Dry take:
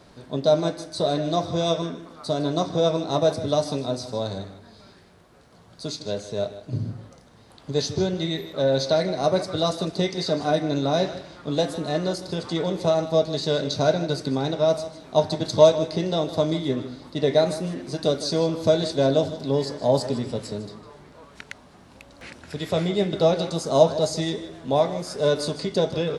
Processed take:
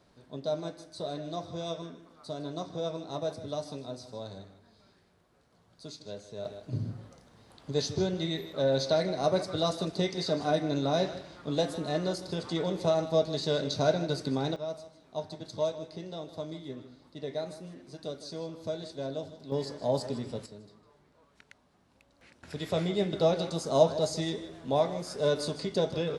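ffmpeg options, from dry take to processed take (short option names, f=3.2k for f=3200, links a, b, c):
-af "asetnsamples=n=441:p=0,asendcmd='6.45 volume volume -5.5dB;14.56 volume volume -16dB;19.52 volume volume -8.5dB;20.46 volume volume -17dB;22.43 volume volume -6dB',volume=-13dB"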